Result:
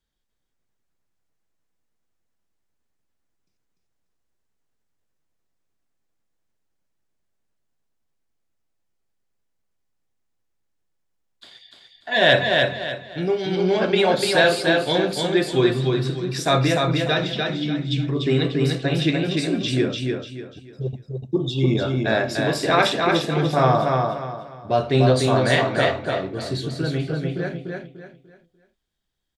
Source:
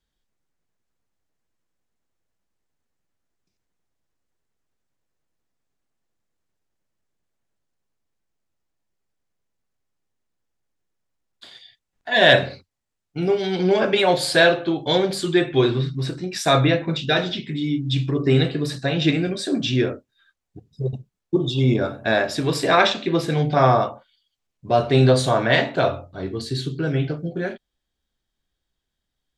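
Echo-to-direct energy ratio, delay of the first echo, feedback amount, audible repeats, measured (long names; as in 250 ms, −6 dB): −3.0 dB, 295 ms, 32%, 4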